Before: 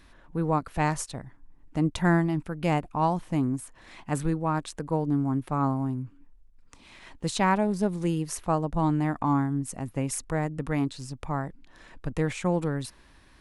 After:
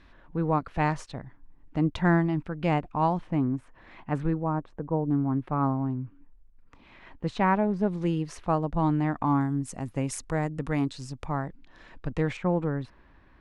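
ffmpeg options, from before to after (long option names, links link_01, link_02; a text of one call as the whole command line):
ffmpeg -i in.wav -af "asetnsamples=nb_out_samples=441:pad=0,asendcmd='3.27 lowpass f 2300;4.44 lowpass f 1000;5.11 lowpass f 2300;7.87 lowpass f 4100;9.41 lowpass f 8100;11.26 lowpass f 4600;12.37 lowpass f 1900',lowpass=3700" out.wav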